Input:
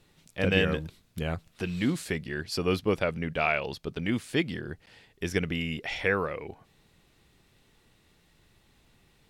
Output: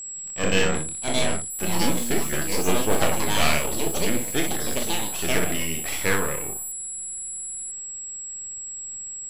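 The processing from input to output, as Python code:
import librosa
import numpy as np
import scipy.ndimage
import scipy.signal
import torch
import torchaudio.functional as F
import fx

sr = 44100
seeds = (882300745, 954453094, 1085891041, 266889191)

y = np.maximum(x, 0.0)
y = y + 10.0 ** (-39.0 / 20.0) * np.sin(2.0 * np.pi * 7700.0 * np.arange(len(y)) / sr)
y = fx.room_early_taps(y, sr, ms=(27, 61), db=(-7.0, -6.5))
y = fx.echo_pitch(y, sr, ms=751, semitones=5, count=2, db_per_echo=-3.0)
y = y * librosa.db_to_amplitude(5.0)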